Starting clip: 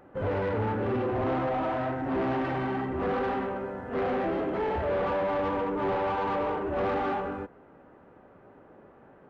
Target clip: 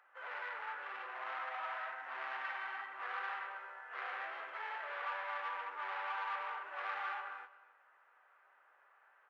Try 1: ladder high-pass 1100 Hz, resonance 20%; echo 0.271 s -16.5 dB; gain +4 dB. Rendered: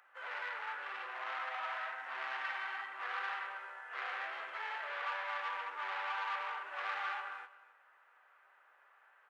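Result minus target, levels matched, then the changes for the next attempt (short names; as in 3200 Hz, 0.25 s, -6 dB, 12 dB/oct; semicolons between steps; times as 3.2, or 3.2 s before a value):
4000 Hz band +3.5 dB
add after ladder high-pass: high shelf 3400 Hz -11.5 dB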